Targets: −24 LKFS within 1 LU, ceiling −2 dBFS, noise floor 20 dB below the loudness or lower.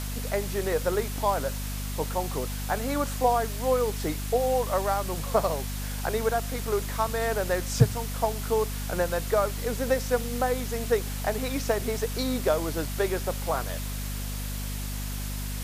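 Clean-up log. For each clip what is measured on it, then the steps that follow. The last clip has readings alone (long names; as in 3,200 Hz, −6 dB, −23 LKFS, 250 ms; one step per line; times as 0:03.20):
mains hum 50 Hz; hum harmonics up to 250 Hz; level of the hum −31 dBFS; background noise floor −32 dBFS; target noise floor −48 dBFS; integrated loudness −28.0 LKFS; sample peak −5.5 dBFS; target loudness −24.0 LKFS
→ hum removal 50 Hz, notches 5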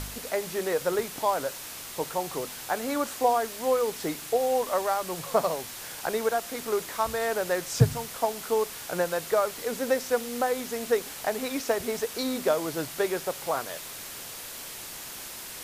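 mains hum none found; background noise floor −40 dBFS; target noise floor −49 dBFS
→ noise reduction from a noise print 9 dB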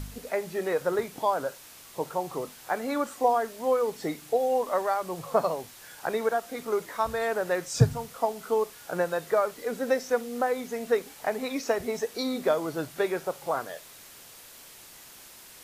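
background noise floor −49 dBFS; integrated loudness −29.0 LKFS; sample peak −5.5 dBFS; target loudness −24.0 LKFS
→ level +5 dB
brickwall limiter −2 dBFS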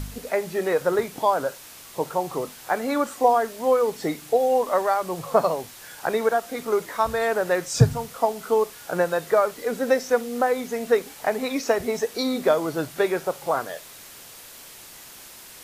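integrated loudness −24.0 LKFS; sample peak −2.0 dBFS; background noise floor −44 dBFS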